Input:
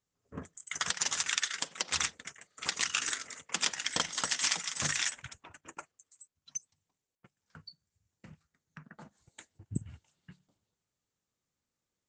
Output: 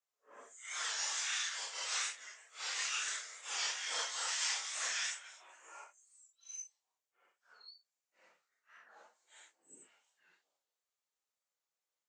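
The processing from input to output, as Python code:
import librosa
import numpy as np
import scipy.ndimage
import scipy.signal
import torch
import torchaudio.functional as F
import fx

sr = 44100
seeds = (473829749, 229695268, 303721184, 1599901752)

y = fx.phase_scramble(x, sr, seeds[0], window_ms=200)
y = scipy.signal.sosfilt(scipy.signal.butter(4, 500.0, 'highpass', fs=sr, output='sos'), y)
y = fx.record_warp(y, sr, rpm=45.0, depth_cents=100.0)
y = y * 10.0 ** (-4.5 / 20.0)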